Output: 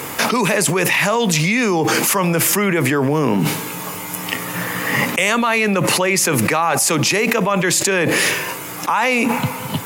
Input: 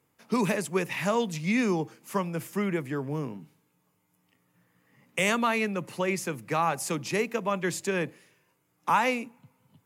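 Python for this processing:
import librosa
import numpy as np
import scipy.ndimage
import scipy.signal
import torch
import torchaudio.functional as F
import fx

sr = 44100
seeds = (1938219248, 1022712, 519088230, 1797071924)

p1 = fx.rider(x, sr, range_db=10, speed_s=0.5)
p2 = x + F.gain(torch.from_numpy(p1), -1.0).numpy()
p3 = fx.low_shelf(p2, sr, hz=290.0, db=-11.0)
y = fx.env_flatten(p3, sr, amount_pct=100)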